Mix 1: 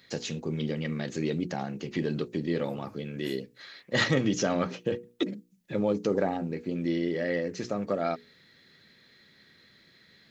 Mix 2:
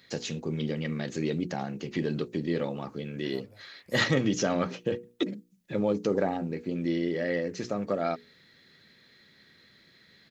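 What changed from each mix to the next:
second voice: entry +0.65 s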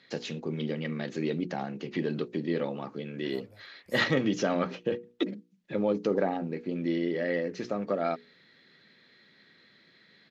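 first voice: add band-pass filter 160–4,300 Hz

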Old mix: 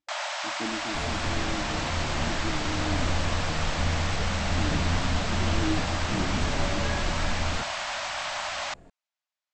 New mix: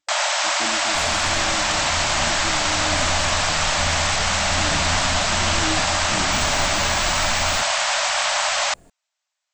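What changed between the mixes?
first sound +9.5 dB
second sound: add high-shelf EQ 5,000 Hz +8.5 dB
master: remove high-frequency loss of the air 82 metres

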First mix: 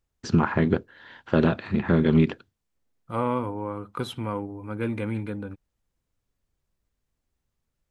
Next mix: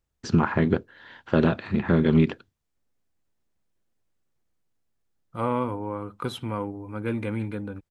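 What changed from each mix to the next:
second voice: entry +2.25 s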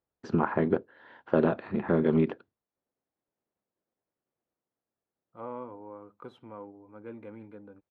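second voice −11.0 dB
master: add resonant band-pass 580 Hz, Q 0.74

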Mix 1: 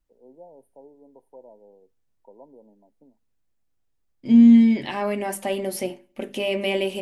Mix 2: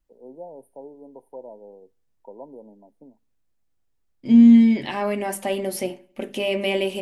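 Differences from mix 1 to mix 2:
first voice +7.5 dB
second voice: send +6.0 dB

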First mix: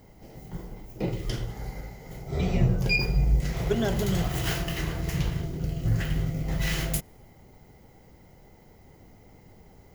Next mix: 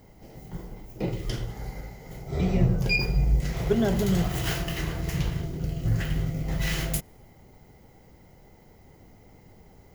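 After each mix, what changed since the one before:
speech: add spectral tilt −2 dB per octave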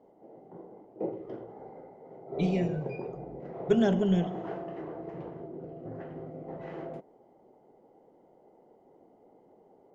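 background: add flat-topped band-pass 500 Hz, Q 0.89

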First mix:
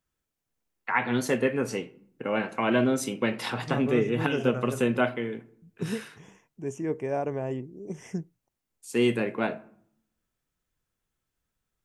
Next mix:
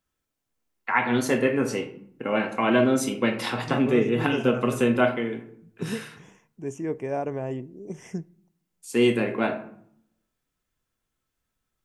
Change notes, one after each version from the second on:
first voice: send +11.0 dB
second voice: send on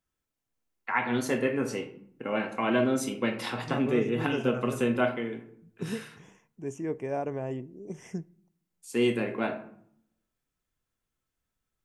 first voice −5.0 dB
second voice −3.0 dB

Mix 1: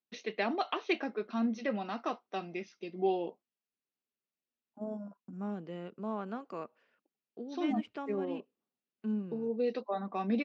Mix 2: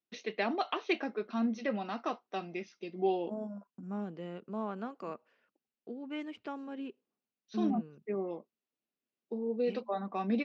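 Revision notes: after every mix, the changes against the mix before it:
second voice: entry −1.50 s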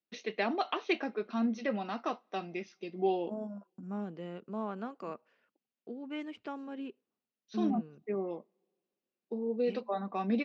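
reverb: on

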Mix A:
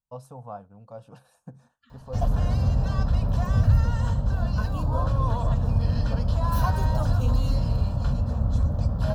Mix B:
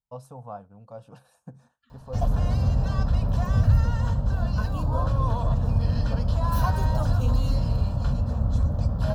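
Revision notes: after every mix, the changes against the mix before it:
second voice −6.0 dB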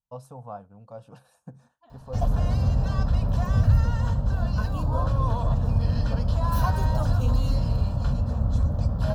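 second voice: remove linear-phase brick-wall band-stop 260–1,100 Hz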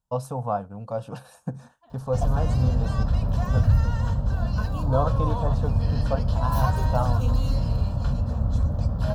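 first voice +12.0 dB

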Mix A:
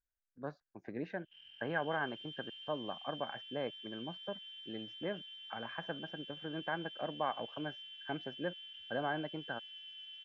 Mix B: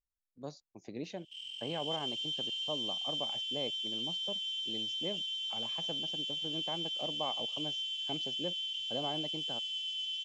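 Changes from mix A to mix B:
background +4.0 dB
master: remove low-pass with resonance 1,600 Hz, resonance Q 9.4

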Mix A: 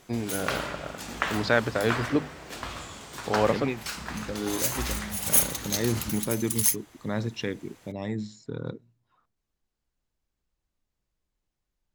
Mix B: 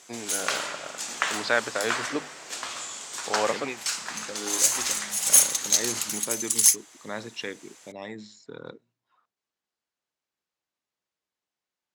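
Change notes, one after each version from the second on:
background: add parametric band 7,400 Hz +12.5 dB 1.2 octaves
master: add meter weighting curve A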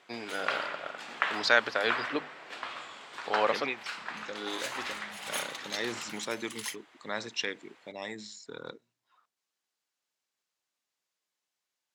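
background: add high-frequency loss of the air 450 metres
master: add spectral tilt +2 dB per octave

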